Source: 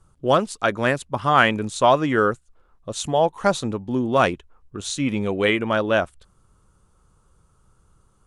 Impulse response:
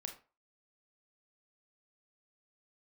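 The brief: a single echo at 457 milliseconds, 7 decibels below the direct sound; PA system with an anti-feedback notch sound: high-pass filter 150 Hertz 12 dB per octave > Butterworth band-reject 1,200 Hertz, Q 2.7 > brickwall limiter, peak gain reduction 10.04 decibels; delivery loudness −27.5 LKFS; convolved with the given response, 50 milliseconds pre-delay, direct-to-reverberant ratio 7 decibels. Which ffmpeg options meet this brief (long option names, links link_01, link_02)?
-filter_complex "[0:a]aecho=1:1:457:0.447,asplit=2[link_01][link_02];[1:a]atrim=start_sample=2205,adelay=50[link_03];[link_02][link_03]afir=irnorm=-1:irlink=0,volume=-4.5dB[link_04];[link_01][link_04]amix=inputs=2:normalize=0,highpass=150,asuperstop=centerf=1200:order=8:qfactor=2.7,volume=-3.5dB,alimiter=limit=-15.5dB:level=0:latency=1"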